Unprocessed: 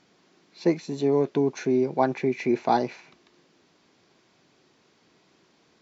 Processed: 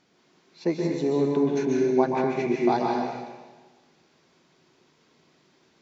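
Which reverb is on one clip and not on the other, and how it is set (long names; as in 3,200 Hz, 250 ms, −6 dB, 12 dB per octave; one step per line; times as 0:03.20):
dense smooth reverb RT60 1.3 s, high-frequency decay 0.9×, pre-delay 115 ms, DRR −1 dB
level −3.5 dB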